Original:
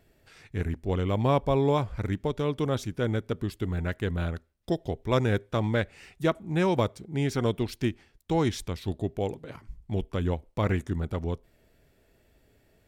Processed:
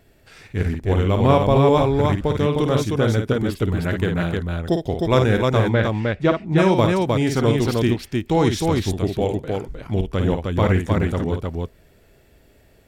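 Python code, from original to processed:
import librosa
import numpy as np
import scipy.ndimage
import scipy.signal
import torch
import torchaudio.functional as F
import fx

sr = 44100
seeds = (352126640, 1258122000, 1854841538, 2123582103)

y = fx.air_absorb(x, sr, metres=130.0, at=(5.69, 6.58))
y = fx.echo_multitap(y, sr, ms=(53, 309), db=(-6.5, -3.0))
y = y * 10.0 ** (7.0 / 20.0)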